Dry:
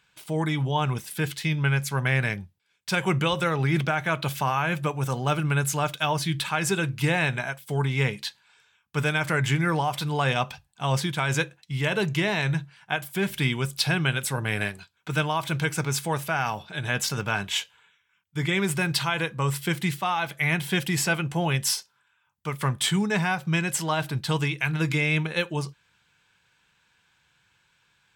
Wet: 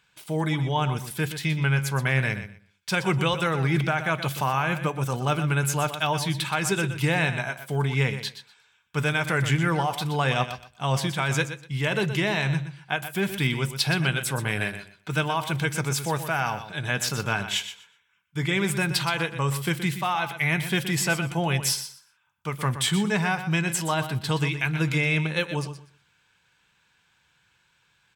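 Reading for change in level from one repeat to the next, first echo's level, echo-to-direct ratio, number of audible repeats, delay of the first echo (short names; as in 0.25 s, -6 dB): -14.5 dB, -11.0 dB, -11.0 dB, 2, 0.122 s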